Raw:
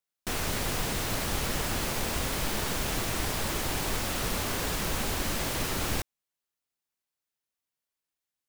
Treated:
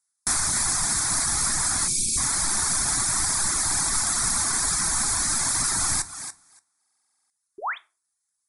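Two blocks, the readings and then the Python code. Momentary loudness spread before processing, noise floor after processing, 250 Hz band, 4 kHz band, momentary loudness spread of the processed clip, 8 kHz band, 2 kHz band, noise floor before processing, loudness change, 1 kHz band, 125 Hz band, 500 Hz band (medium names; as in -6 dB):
1 LU, -79 dBFS, -3.0 dB, +4.5 dB, 11 LU, +15.0 dB, +3.0 dB, under -85 dBFS, +8.5 dB, +4.0 dB, -2.5 dB, -8.0 dB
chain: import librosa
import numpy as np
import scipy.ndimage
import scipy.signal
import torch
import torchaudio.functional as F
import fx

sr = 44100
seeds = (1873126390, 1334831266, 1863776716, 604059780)

y = fx.brickwall_lowpass(x, sr, high_hz=11000.0)
y = fx.riaa(y, sr, side='recording')
y = fx.echo_thinned(y, sr, ms=286, feedback_pct=16, hz=210.0, wet_db=-8.5)
y = fx.dereverb_blind(y, sr, rt60_s=0.87)
y = fx.low_shelf(y, sr, hz=130.0, db=11.0)
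y = fx.spec_paint(y, sr, seeds[0], shape='rise', start_s=7.58, length_s=0.2, low_hz=350.0, high_hz=3800.0, level_db=-32.0)
y = fx.fixed_phaser(y, sr, hz=1200.0, stages=4)
y = fx.spec_erase(y, sr, start_s=1.87, length_s=0.31, low_hz=410.0, high_hz=2200.0)
y = fx.room_shoebox(y, sr, seeds[1], volume_m3=160.0, walls='furnished', distance_m=0.3)
y = fx.buffer_glitch(y, sr, at_s=(6.79,), block=2048, repeats=10)
y = F.gain(torch.from_numpy(y), 6.5).numpy()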